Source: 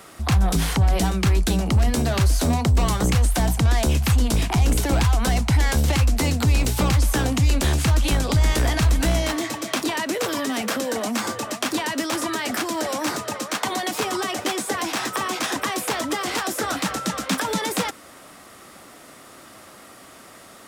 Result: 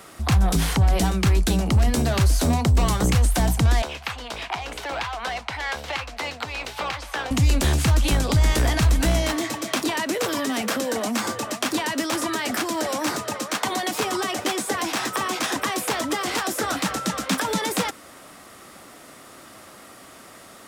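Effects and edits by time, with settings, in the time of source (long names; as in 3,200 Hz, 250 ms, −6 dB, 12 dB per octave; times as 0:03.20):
0:03.82–0:07.31: three-way crossover with the lows and the highs turned down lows −23 dB, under 530 Hz, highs −18 dB, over 4,400 Hz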